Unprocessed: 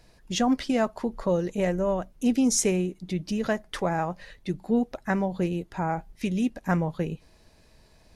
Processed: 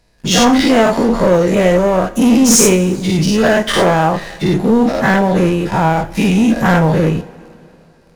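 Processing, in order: every event in the spectrogram widened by 120 ms; waveshaping leveller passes 3; two-slope reverb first 0.4 s, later 3.2 s, from -18 dB, DRR 9.5 dB; trim +1 dB

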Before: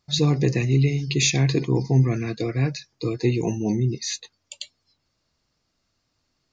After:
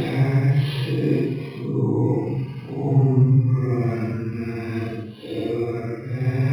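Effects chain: Paulstretch 5.1×, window 0.10 s, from 1.35 s; decimation joined by straight lines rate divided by 6×

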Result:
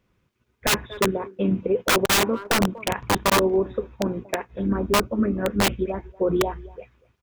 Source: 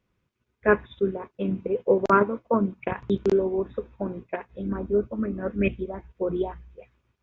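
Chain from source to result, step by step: speakerphone echo 240 ms, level -22 dB; integer overflow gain 16.5 dB; peak limiter -19.5 dBFS, peak gain reduction 3 dB; trim +6 dB

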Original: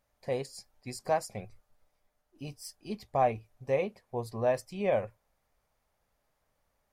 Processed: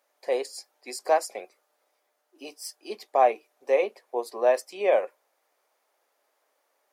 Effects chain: steep high-pass 320 Hz 36 dB/octave; trim +6.5 dB

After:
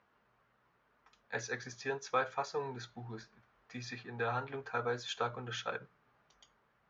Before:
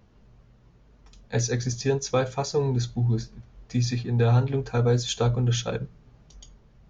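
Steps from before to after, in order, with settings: band-pass filter 1.4 kHz, Q 1.5

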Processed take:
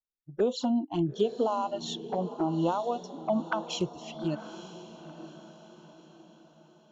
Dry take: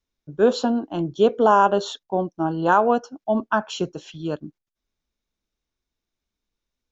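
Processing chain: compression 12:1, threshold -21 dBFS, peak gain reduction 11 dB; spectral noise reduction 19 dB; touch-sensitive flanger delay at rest 8.5 ms, full sweep at -23.5 dBFS; on a send: echo that smears into a reverb 904 ms, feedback 44%, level -13 dB

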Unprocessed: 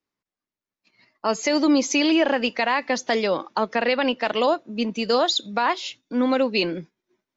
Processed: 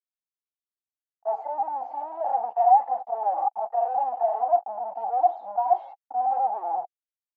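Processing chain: harmonic-percussive separation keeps harmonic; slow attack 187 ms; level rider gain up to 14 dB; fuzz box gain 38 dB, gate -40 dBFS; Butterworth band-pass 770 Hz, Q 6; tape noise reduction on one side only decoder only; trim +3.5 dB

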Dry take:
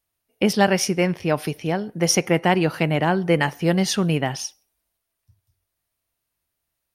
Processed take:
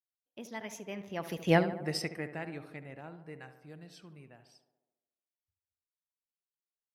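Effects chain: Doppler pass-by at 1.54 s, 36 m/s, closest 2.1 m; dynamic bell 2 kHz, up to +6 dB, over -58 dBFS, Q 3.6; on a send: tape echo 72 ms, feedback 71%, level -10 dB, low-pass 1.8 kHz

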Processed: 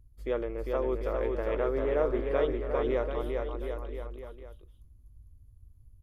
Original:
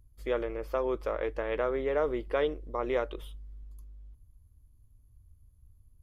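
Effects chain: tilt shelf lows +3.5 dB, about 640 Hz; bouncing-ball echo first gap 400 ms, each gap 0.85×, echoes 5; trim -1.5 dB

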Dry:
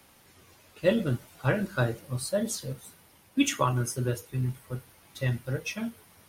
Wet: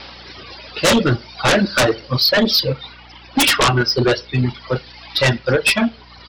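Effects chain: wow and flutter 25 cents; on a send at -14 dB: reverberation, pre-delay 44 ms; on the sum: reverb removal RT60 1.1 s; tone controls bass -11 dB, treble +12 dB; resampled via 11.025 kHz; hum 60 Hz, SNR 35 dB; in parallel at -3.5 dB: sine folder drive 18 dB, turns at -11 dBFS; on the sum: trim +3.5 dB

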